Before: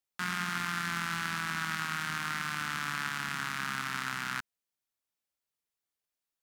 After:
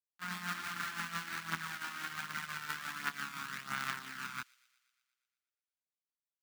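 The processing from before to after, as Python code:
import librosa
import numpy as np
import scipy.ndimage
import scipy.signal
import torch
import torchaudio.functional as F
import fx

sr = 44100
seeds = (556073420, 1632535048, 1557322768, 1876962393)

p1 = fx.low_shelf(x, sr, hz=130.0, db=-8.0)
p2 = fx.quant_float(p1, sr, bits=2)
p3 = fx.chorus_voices(p2, sr, voices=2, hz=0.65, base_ms=26, depth_ms=2.4, mix_pct=65)
p4 = p3 * (1.0 - 0.28 / 2.0 + 0.28 / 2.0 * np.cos(2.0 * np.pi * 5.9 * (np.arange(len(p3)) / sr)))
p5 = p4 + fx.echo_wet_highpass(p4, sr, ms=119, feedback_pct=65, hz=3000.0, wet_db=-8, dry=0)
p6 = np.repeat(p5[::2], 2)[:len(p5)]
p7 = fx.upward_expand(p6, sr, threshold_db=-46.0, expansion=2.5)
y = F.gain(torch.from_numpy(p7), 3.0).numpy()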